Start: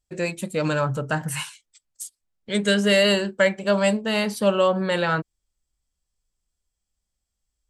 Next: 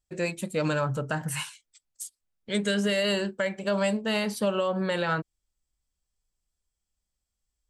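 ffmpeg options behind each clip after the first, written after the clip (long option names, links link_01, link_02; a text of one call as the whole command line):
ffmpeg -i in.wav -af "alimiter=limit=-14.5dB:level=0:latency=1:release=94,volume=-3dB" out.wav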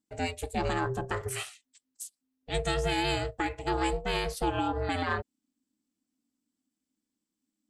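ffmpeg -i in.wav -af "aeval=exprs='val(0)*sin(2*PI*260*n/s)':channel_layout=same" out.wav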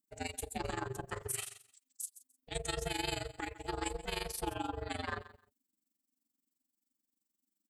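ffmpeg -i in.wav -af "aemphasis=mode=production:type=50fm,aecho=1:1:146|292:0.141|0.0254,tremolo=f=23:d=0.857,volume=-5.5dB" out.wav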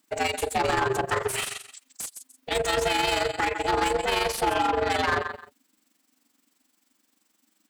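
ffmpeg -i in.wav -filter_complex "[0:a]asplit=2[link_01][link_02];[link_02]highpass=frequency=720:poles=1,volume=28dB,asoftclip=type=tanh:threshold=-20dB[link_03];[link_01][link_03]amix=inputs=2:normalize=0,lowpass=frequency=2500:poles=1,volume=-6dB,volume=5.5dB" out.wav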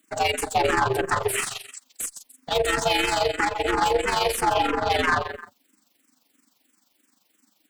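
ffmpeg -i in.wav -filter_complex "[0:a]asplit=2[link_01][link_02];[link_02]aeval=exprs='clip(val(0),-1,0.02)':channel_layout=same,volume=-7dB[link_03];[link_01][link_03]amix=inputs=2:normalize=0,asplit=2[link_04][link_05];[link_05]afreqshift=-3[link_06];[link_04][link_06]amix=inputs=2:normalize=1,volume=3dB" out.wav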